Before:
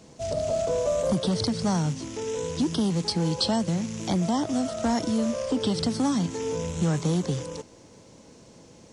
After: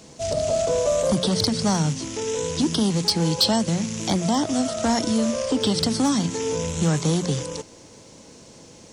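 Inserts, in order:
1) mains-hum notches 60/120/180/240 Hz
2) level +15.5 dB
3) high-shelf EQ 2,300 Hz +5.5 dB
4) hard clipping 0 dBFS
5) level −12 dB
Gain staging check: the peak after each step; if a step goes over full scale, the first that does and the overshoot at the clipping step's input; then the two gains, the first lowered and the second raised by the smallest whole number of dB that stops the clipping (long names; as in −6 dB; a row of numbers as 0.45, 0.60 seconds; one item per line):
−12.5, +3.0, +6.5, 0.0, −12.0 dBFS
step 2, 6.5 dB
step 2 +8.5 dB, step 5 −5 dB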